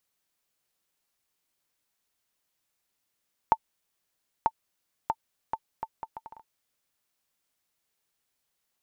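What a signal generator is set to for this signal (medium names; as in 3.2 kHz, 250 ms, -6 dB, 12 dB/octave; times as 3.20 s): bouncing ball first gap 0.94 s, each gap 0.68, 894 Hz, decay 52 ms -8 dBFS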